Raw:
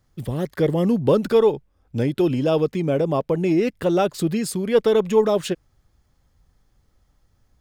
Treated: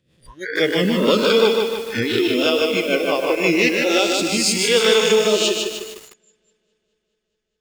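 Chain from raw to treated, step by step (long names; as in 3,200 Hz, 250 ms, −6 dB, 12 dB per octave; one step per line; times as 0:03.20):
peak hold with a rise ahead of every peak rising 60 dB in 0.76 s
0:03.84–0:04.78: dynamic equaliser 1,500 Hz, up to −8 dB, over −37 dBFS, Q 1.2
rotating-speaker cabinet horn 6 Hz, later 0.75 Hz, at 0:03.35
flat-topped bell 3,300 Hz +14.5 dB 2.7 octaves
delay that swaps between a low-pass and a high-pass 104 ms, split 1,200 Hz, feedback 86%, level −12 dB
noise reduction from a noise print of the clip's start 28 dB
feedback echo at a low word length 151 ms, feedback 55%, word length 6 bits, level −3.5 dB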